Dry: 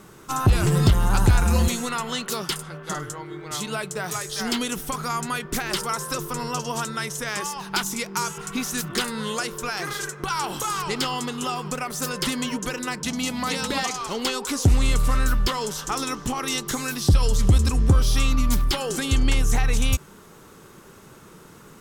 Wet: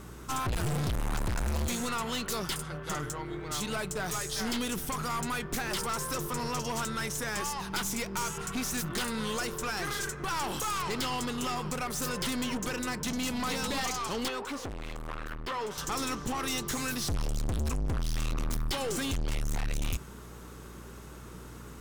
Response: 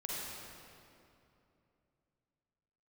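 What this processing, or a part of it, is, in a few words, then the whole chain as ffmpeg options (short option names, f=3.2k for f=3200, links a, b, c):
valve amplifier with mains hum: -filter_complex "[0:a]aeval=exprs='(tanh(28.2*val(0)+0.4)-tanh(0.4))/28.2':c=same,aeval=exprs='val(0)+0.00447*(sin(2*PI*60*n/s)+sin(2*PI*2*60*n/s)/2+sin(2*PI*3*60*n/s)/3+sin(2*PI*4*60*n/s)/4+sin(2*PI*5*60*n/s)/5)':c=same,asettb=1/sr,asplit=3[a][b][c];[a]atrim=end=14.284[d];[b]atrim=start=14.28:end=15.78,asetpts=PTS-STARTPTS,afade=t=in:d=0.004:c=qsin,afade=t=out:st=1.496:d=0.004:c=qsin,bass=f=250:g=-10,treble=f=4k:g=-14[e];[c]atrim=start=15.776[f];[d][e]acrossfade=d=0.004:c1=hsin:c2=qsin[g];[g][f]acrossfade=d=0.004:c1=qsin:c2=hsin"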